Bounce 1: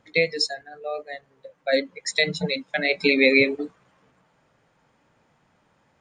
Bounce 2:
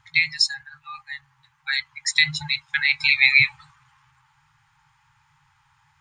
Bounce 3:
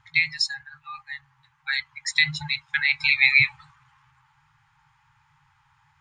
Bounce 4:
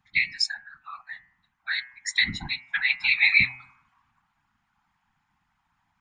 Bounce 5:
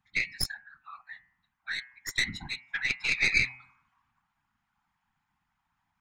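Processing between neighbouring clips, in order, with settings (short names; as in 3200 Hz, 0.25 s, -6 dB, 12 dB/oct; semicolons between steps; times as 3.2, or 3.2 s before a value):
FFT band-reject 160–790 Hz; gain +4.5 dB
high shelf 4500 Hz -8 dB
spectral noise reduction 8 dB; whisperiser; de-hum 126.4 Hz, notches 23; gain -1.5 dB
tracing distortion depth 0.057 ms; gain -6 dB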